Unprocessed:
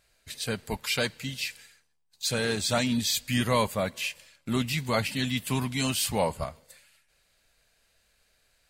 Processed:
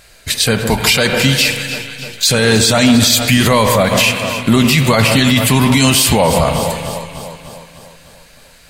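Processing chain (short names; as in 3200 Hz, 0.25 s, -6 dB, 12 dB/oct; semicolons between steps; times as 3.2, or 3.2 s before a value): on a send: echo with dull and thin repeats by turns 0.15 s, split 1500 Hz, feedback 74%, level -13 dB; on the sum: spring tank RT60 2.1 s, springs 36/44 ms, chirp 70 ms, DRR 11 dB; maximiser +24 dB; gain -1 dB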